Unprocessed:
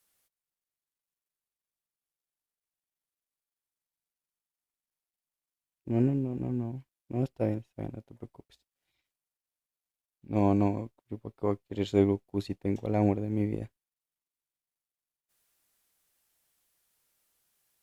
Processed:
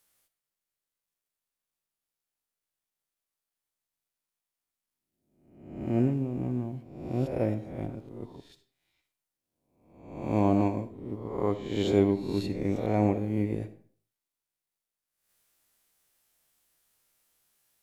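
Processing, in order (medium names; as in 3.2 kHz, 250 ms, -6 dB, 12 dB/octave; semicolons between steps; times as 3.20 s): reverse spectral sustain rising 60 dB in 0.80 s; on a send: reverberation RT60 0.50 s, pre-delay 20 ms, DRR 12 dB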